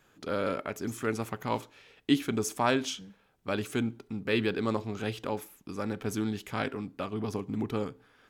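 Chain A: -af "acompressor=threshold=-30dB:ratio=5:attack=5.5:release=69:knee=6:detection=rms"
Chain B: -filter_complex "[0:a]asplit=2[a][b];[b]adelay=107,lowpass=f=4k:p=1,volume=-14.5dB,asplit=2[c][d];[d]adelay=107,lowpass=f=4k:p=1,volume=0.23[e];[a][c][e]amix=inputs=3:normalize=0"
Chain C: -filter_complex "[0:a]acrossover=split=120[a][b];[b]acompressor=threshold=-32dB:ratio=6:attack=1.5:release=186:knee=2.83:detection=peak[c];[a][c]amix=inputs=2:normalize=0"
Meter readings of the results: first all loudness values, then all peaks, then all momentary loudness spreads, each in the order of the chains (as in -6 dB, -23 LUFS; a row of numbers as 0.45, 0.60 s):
-37.0, -32.5, -39.5 LUFS; -20.0, -10.5, -20.5 dBFS; 7, 10, 6 LU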